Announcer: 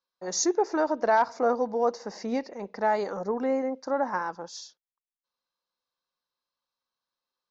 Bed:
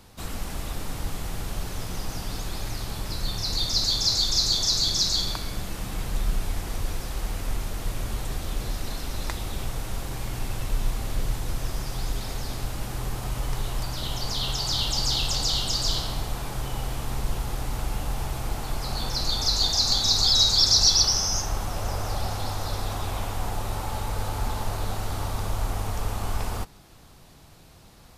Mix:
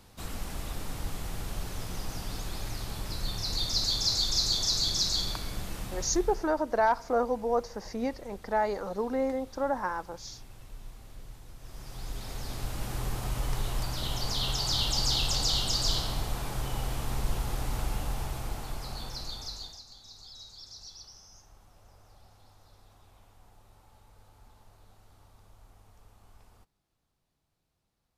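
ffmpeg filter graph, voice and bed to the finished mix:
-filter_complex "[0:a]adelay=5700,volume=-2.5dB[a];[1:a]volume=12.5dB,afade=t=out:st=5.77:d=0.74:silence=0.177828,afade=t=in:st=11.59:d=1.35:silence=0.141254,afade=t=out:st=17.8:d=2.04:silence=0.0473151[b];[a][b]amix=inputs=2:normalize=0"

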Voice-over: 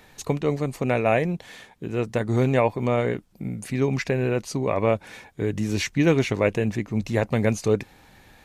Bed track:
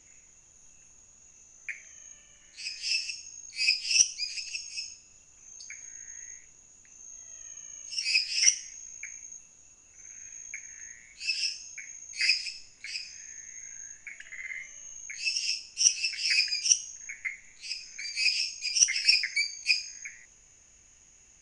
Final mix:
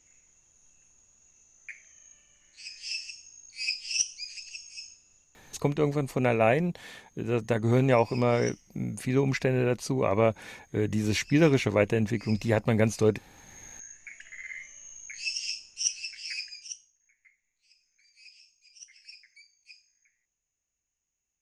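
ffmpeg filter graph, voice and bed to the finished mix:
-filter_complex "[0:a]adelay=5350,volume=-2dB[a];[1:a]volume=13dB,afade=t=out:st=5.12:d=0.57:silence=0.177828,afade=t=in:st=13.3:d=0.48:silence=0.11885,afade=t=out:st=15.22:d=1.7:silence=0.0562341[b];[a][b]amix=inputs=2:normalize=0"

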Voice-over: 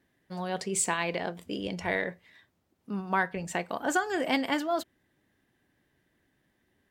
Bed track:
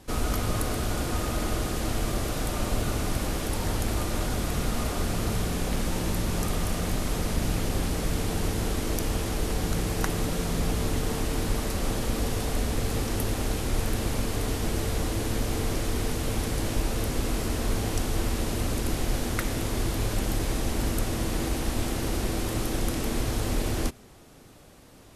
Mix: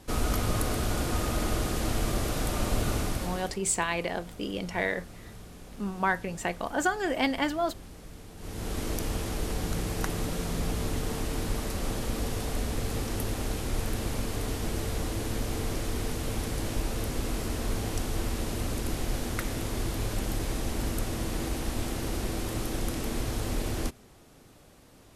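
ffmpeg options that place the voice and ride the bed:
-filter_complex "[0:a]adelay=2900,volume=0.5dB[a];[1:a]volume=14.5dB,afade=t=out:st=2.96:d=0.63:silence=0.125893,afade=t=in:st=8.37:d=0.44:silence=0.177828[b];[a][b]amix=inputs=2:normalize=0"

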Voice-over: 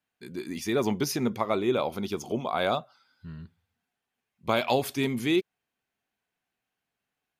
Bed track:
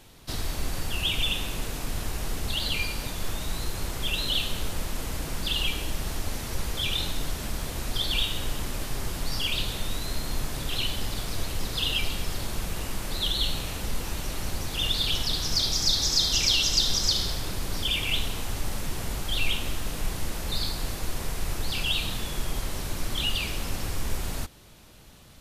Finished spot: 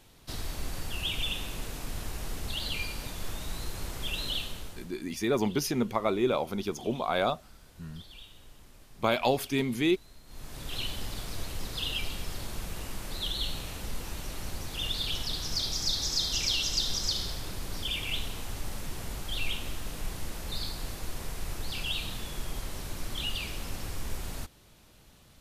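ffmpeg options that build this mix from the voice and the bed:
-filter_complex "[0:a]adelay=4550,volume=-1dB[a];[1:a]volume=11.5dB,afade=t=out:st=4.28:d=0.66:silence=0.133352,afade=t=in:st=10.26:d=0.52:silence=0.141254[b];[a][b]amix=inputs=2:normalize=0"

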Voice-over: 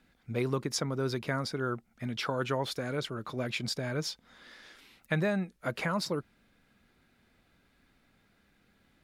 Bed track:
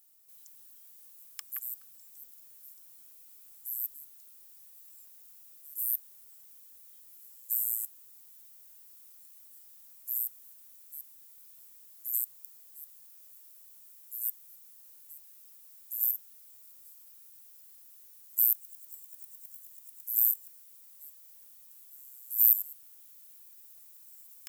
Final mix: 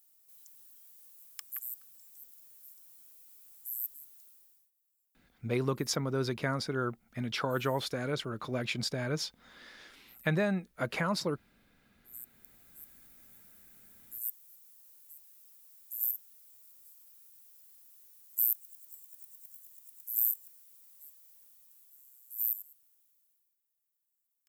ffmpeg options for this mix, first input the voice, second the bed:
-filter_complex "[0:a]adelay=5150,volume=0dB[a];[1:a]volume=19.5dB,afade=t=out:st=4.2:d=0.51:silence=0.0707946,afade=t=in:st=12.05:d=0.79:silence=0.0841395,afade=t=out:st=21.03:d=2.56:silence=0.0501187[b];[a][b]amix=inputs=2:normalize=0"

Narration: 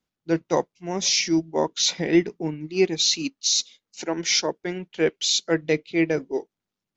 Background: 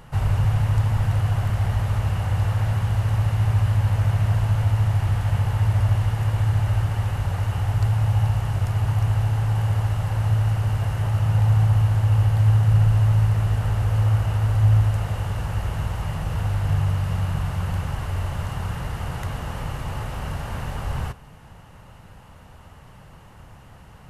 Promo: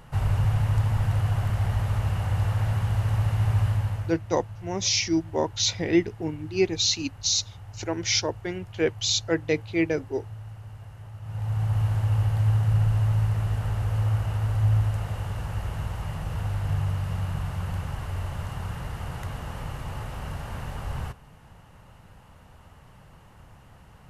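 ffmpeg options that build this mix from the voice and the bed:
-filter_complex "[0:a]adelay=3800,volume=-2.5dB[a];[1:a]volume=11.5dB,afade=t=out:st=3.64:d=0.55:silence=0.149624,afade=t=in:st=11.21:d=0.65:silence=0.188365[b];[a][b]amix=inputs=2:normalize=0"

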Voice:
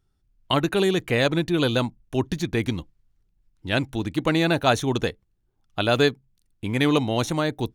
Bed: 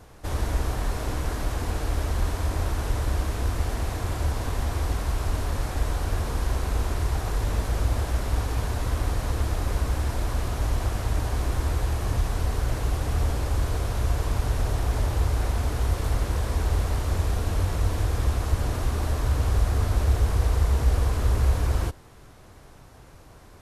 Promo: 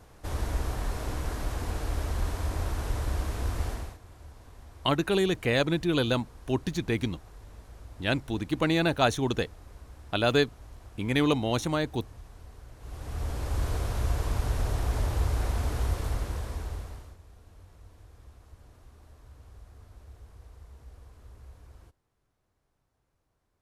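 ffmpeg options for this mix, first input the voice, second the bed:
-filter_complex "[0:a]adelay=4350,volume=-4dB[a];[1:a]volume=14.5dB,afade=t=out:st=3.67:d=0.31:silence=0.125893,afade=t=in:st=12.78:d=0.9:silence=0.112202,afade=t=out:st=15.8:d=1.37:silence=0.0595662[b];[a][b]amix=inputs=2:normalize=0"

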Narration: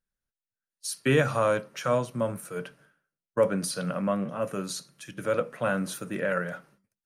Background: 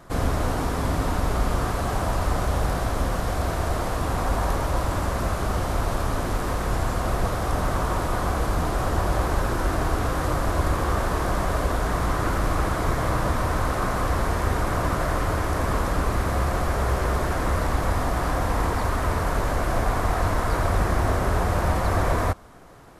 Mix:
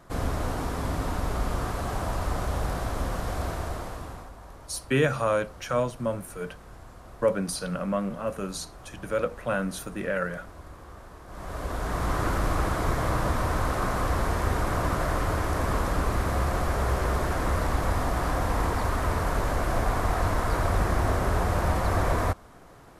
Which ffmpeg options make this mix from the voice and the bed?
-filter_complex "[0:a]adelay=3850,volume=-0.5dB[a];[1:a]volume=14.5dB,afade=t=out:st=3.43:d=0.89:silence=0.141254,afade=t=in:st=11.27:d=0.9:silence=0.105925[b];[a][b]amix=inputs=2:normalize=0"

